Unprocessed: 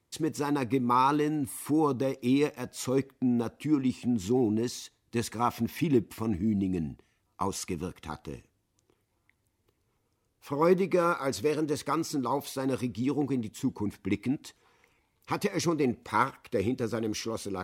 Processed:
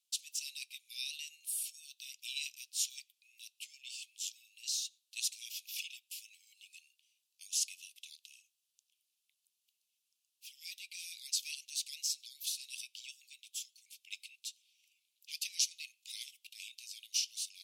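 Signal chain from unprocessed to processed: steep high-pass 2.6 kHz 72 dB/octave; dynamic bell 5.9 kHz, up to +4 dB, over -52 dBFS, Q 0.75; trim +1 dB

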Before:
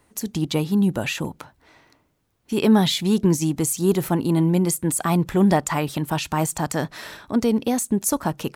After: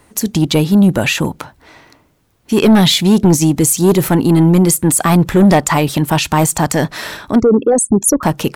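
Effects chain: 7.40–8.23 s: resonances exaggerated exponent 3; in parallel at -9.5 dB: sine folder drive 9 dB, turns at -5.5 dBFS; on the sum: trim +3.5 dB

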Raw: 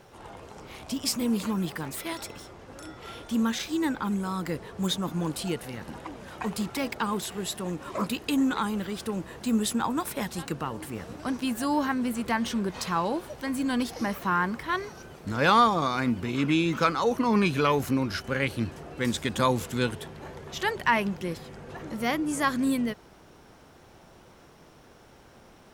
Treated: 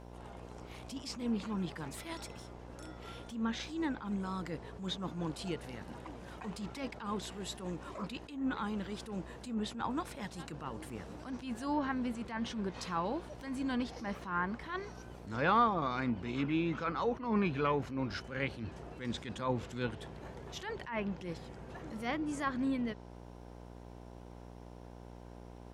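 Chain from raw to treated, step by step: mains buzz 60 Hz, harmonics 17, -43 dBFS -4 dB/octave; low-pass that closes with the level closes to 2.4 kHz, closed at -20 dBFS; attacks held to a fixed rise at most 110 dB/s; trim -7.5 dB

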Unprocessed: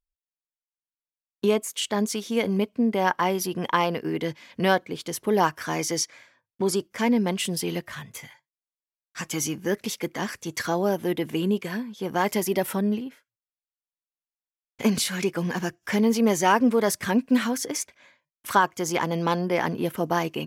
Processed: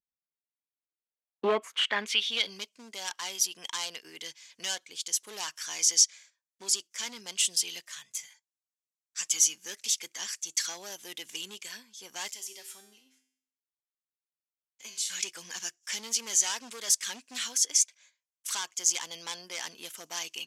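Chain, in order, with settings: gate -53 dBFS, range -8 dB; dynamic bell 3.2 kHz, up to +7 dB, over -45 dBFS, Q 1.7; 12.32–15.10 s: feedback comb 130 Hz, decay 0.66 s, harmonics all, mix 80%; hard clipper -18.5 dBFS, distortion -11 dB; band-pass sweep 200 Hz -> 6.9 kHz, 0.60–2.72 s; trim +9 dB

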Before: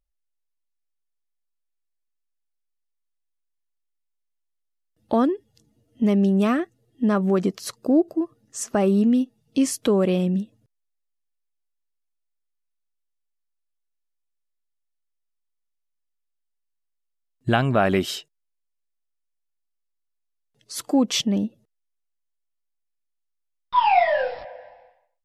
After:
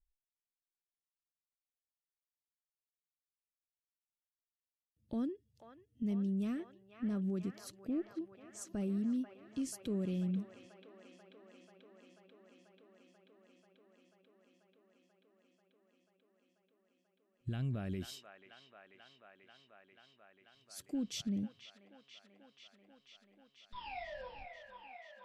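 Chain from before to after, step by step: amplifier tone stack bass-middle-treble 10-0-1; peak limiter -33 dBFS, peak gain reduction 6 dB; on a send: feedback echo behind a band-pass 488 ms, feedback 83%, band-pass 1.4 kHz, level -5 dB; on the sum: trim +3 dB

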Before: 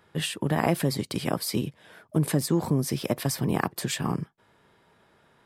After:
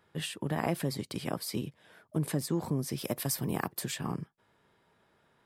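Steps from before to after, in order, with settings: 2.97–3.90 s: treble shelf 6.6 kHz -> 11 kHz +11.5 dB; trim -7 dB

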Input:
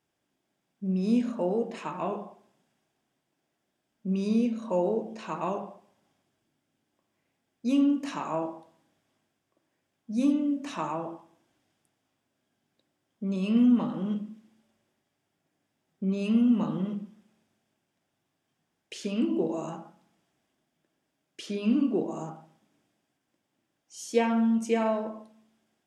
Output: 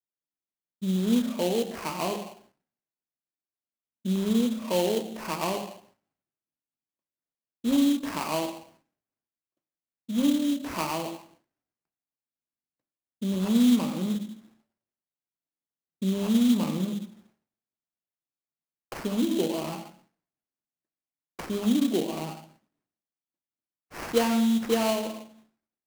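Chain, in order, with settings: expander -58 dBFS; in parallel at -2 dB: compression, threshold -38 dBFS, peak gain reduction 18.5 dB; on the sum: sample-rate reducer 3.6 kHz, jitter 20%

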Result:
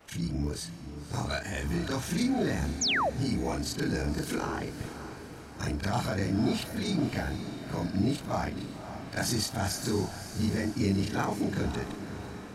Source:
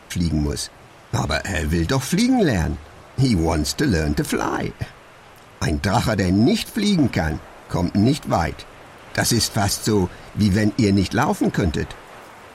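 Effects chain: short-time spectra conjugated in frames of 82 ms; echo that smears into a reverb 552 ms, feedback 53%, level -10 dB; painted sound fall, 2.81–3.10 s, 480–7400 Hz -19 dBFS; trim -8 dB

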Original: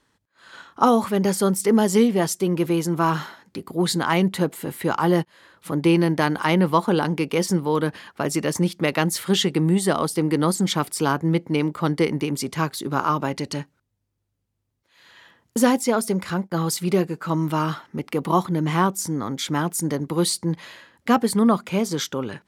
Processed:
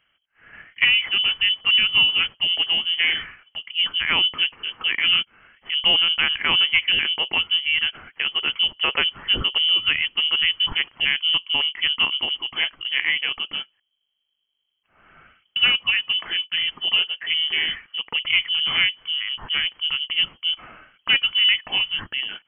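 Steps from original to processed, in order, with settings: single-diode clipper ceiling -7.5 dBFS; frequency inversion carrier 3.2 kHz

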